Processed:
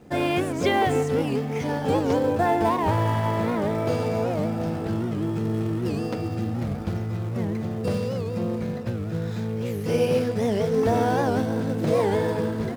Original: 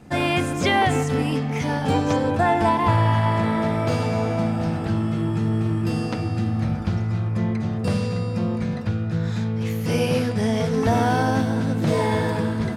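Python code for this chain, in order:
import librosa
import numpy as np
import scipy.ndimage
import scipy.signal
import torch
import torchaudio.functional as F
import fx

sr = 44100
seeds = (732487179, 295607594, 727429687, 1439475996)

p1 = fx.quant_companded(x, sr, bits=4)
p2 = x + (p1 * 10.0 ** (-8.5 / 20.0))
p3 = fx.peak_eq(p2, sr, hz=440.0, db=8.5, octaves=1.1)
p4 = fx.record_warp(p3, sr, rpm=78.0, depth_cents=160.0)
y = p4 * 10.0 ** (-8.5 / 20.0)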